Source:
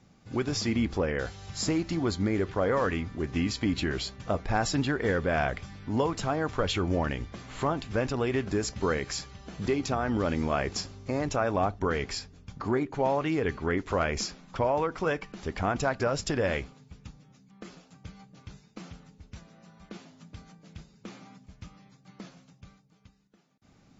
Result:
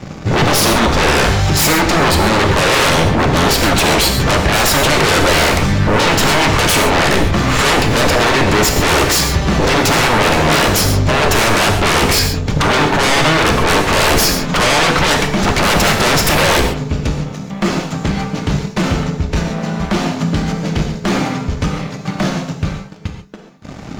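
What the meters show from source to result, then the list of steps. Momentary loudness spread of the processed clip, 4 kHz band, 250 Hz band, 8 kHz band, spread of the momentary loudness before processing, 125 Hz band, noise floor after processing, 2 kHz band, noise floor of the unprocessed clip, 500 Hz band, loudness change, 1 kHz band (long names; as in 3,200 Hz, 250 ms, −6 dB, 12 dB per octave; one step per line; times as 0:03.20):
8 LU, +23.5 dB, +14.5 dB, can't be measured, 20 LU, +18.0 dB, −30 dBFS, +21.0 dB, −61 dBFS, +14.0 dB, +16.5 dB, +18.5 dB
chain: high-shelf EQ 3,400 Hz −7 dB
in parallel at +1 dB: downward compressor, threshold −41 dBFS, peak gain reduction 18 dB
on the sum: leveller curve on the samples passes 2
sine wavefolder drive 14 dB, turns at −13 dBFS
reverb whose tail is shaped and stops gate 160 ms flat, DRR 3.5 dB
level +2.5 dB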